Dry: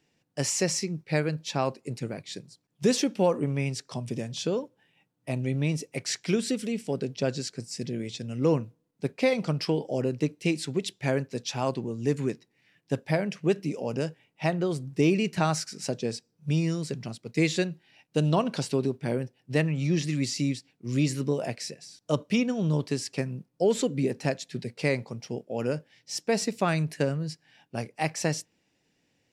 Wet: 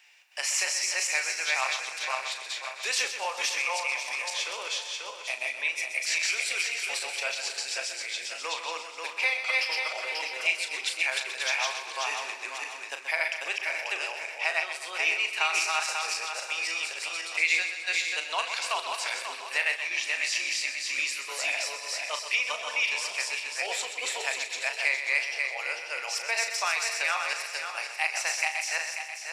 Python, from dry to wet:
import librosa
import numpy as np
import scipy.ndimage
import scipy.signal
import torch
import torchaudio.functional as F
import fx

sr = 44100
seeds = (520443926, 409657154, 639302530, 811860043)

p1 = fx.reverse_delay_fb(x, sr, ms=269, feedback_pct=52, wet_db=0.0)
p2 = scipy.signal.sosfilt(scipy.signal.butter(4, 860.0, 'highpass', fs=sr, output='sos'), p1)
p3 = fx.peak_eq(p2, sr, hz=2400.0, db=9.0, octaves=0.6)
p4 = fx.doubler(p3, sr, ms=37.0, db=-9)
p5 = p4 + fx.echo_feedback(p4, sr, ms=127, feedback_pct=46, wet_db=-10.5, dry=0)
y = fx.band_squash(p5, sr, depth_pct=40)